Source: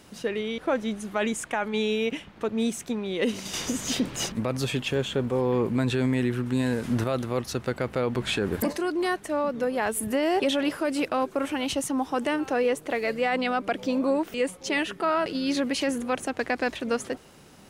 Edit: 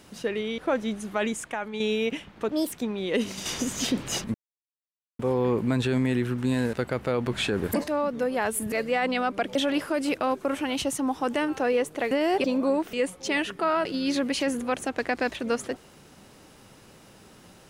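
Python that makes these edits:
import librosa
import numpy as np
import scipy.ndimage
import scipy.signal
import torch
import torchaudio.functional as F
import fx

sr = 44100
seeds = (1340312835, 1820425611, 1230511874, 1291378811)

y = fx.edit(x, sr, fx.fade_out_to(start_s=1.15, length_s=0.65, floor_db=-7.0),
    fx.speed_span(start_s=2.51, length_s=0.29, speed=1.37),
    fx.silence(start_s=4.42, length_s=0.85),
    fx.cut(start_s=6.81, length_s=0.81),
    fx.cut(start_s=8.77, length_s=0.52),
    fx.swap(start_s=10.13, length_s=0.33, other_s=13.02, other_length_s=0.83), tone=tone)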